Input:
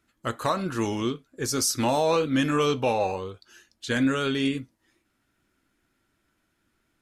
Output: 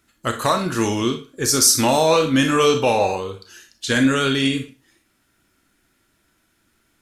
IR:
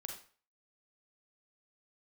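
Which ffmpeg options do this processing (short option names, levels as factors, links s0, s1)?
-filter_complex "[0:a]asplit=2[s0][s1];[1:a]atrim=start_sample=2205,asetrate=52920,aresample=44100,highshelf=f=3100:g=9.5[s2];[s1][s2]afir=irnorm=-1:irlink=0,volume=2[s3];[s0][s3]amix=inputs=2:normalize=0"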